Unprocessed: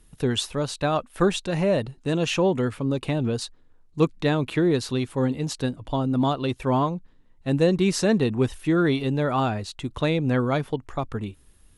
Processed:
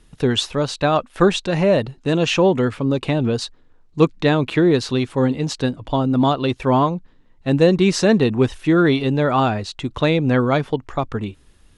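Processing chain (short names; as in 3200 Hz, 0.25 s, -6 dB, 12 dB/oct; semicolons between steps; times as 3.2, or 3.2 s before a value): LPF 6600 Hz 12 dB/oct; low shelf 150 Hz -3.5 dB; gain +6.5 dB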